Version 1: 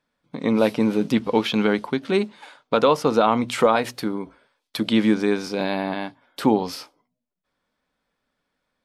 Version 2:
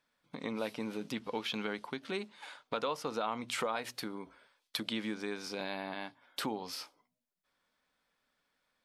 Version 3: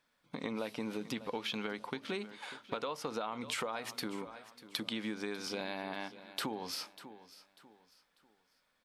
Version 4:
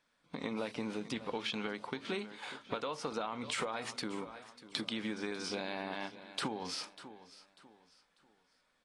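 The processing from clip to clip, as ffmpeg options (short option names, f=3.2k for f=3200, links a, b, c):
-af "acompressor=threshold=-37dB:ratio=2,tiltshelf=f=700:g=-4.5,volume=-4.5dB"
-af "aecho=1:1:594|1188|1782:0.126|0.0415|0.0137,acompressor=threshold=-36dB:ratio=6,volume=2.5dB"
-ar 22050 -c:a aac -b:a 32k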